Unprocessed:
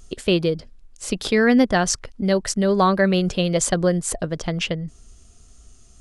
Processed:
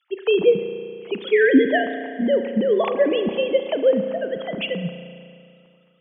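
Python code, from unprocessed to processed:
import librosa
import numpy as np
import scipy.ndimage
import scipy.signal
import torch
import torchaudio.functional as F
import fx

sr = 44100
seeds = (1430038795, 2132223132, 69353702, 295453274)

y = fx.sine_speech(x, sr)
y = fx.band_shelf(y, sr, hz=1400.0, db=-12.0, octaves=1.0, at=(1.92, 3.93))
y = fx.rev_spring(y, sr, rt60_s=2.3, pass_ms=(34,), chirp_ms=60, drr_db=7.5)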